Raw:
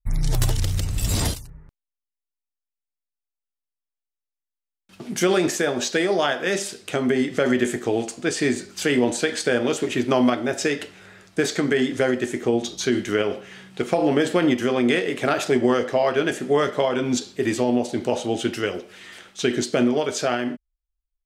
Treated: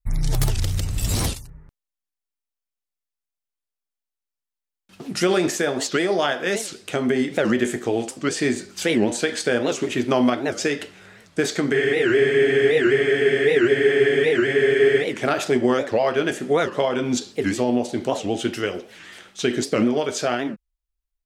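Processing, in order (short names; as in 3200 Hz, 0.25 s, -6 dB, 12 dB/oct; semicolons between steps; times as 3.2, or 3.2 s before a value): spectral freeze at 11.76, 3.28 s; record warp 78 rpm, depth 250 cents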